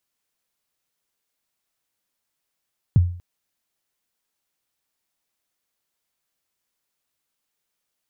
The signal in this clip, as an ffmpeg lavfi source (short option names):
-f lavfi -i "aevalsrc='0.398*pow(10,-3*t/0.47)*sin(2*PI*(160*0.024/log(88/160)*(exp(log(88/160)*min(t,0.024)/0.024)-1)+88*max(t-0.024,0)))':d=0.24:s=44100"